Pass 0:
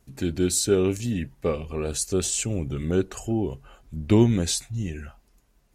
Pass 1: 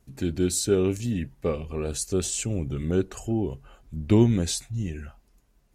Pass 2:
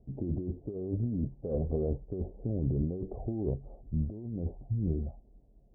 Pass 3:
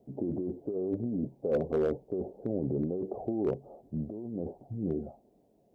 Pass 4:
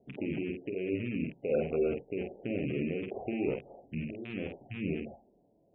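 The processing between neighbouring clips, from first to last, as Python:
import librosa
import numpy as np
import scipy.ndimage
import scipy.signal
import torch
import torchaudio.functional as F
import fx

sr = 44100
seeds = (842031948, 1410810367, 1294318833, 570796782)

y1 = fx.low_shelf(x, sr, hz=440.0, db=3.0)
y1 = y1 * librosa.db_to_amplitude(-3.0)
y2 = scipy.signal.sosfilt(scipy.signal.butter(8, 740.0, 'lowpass', fs=sr, output='sos'), y1)
y2 = fx.over_compress(y2, sr, threshold_db=-31.0, ratio=-1.0)
y2 = y2 * librosa.db_to_amplitude(-1.5)
y3 = scipy.signal.sosfilt(scipy.signal.bessel(2, 350.0, 'highpass', norm='mag', fs=sr, output='sos'), y2)
y3 = np.clip(y3, -10.0 ** (-29.5 / 20.0), 10.0 ** (-29.5 / 20.0))
y3 = y3 * librosa.db_to_amplitude(8.0)
y4 = fx.rattle_buzz(y3, sr, strikes_db=-38.0, level_db=-30.0)
y4 = fx.room_early_taps(y4, sr, ms=(31, 49), db=(-11.0, -4.0))
y4 = fx.spec_gate(y4, sr, threshold_db=-30, keep='strong')
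y4 = y4 * librosa.db_to_amplitude(-3.0)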